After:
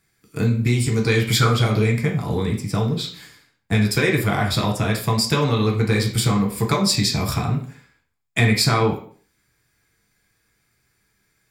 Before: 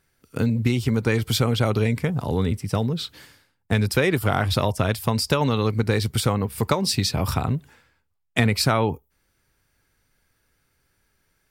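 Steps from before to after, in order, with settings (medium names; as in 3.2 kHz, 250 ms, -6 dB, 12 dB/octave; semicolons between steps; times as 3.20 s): 0.79–1.49 s: peaking EQ 10 kHz -> 1.2 kHz +14 dB 0.39 oct; reverberation RT60 0.50 s, pre-delay 4 ms, DRR -1 dB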